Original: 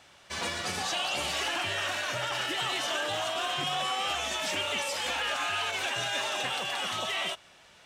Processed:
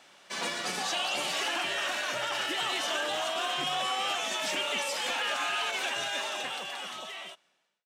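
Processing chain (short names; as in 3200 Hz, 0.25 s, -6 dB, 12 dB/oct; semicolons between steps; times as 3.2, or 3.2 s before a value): ending faded out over 2.08 s; HPF 170 Hz 24 dB/oct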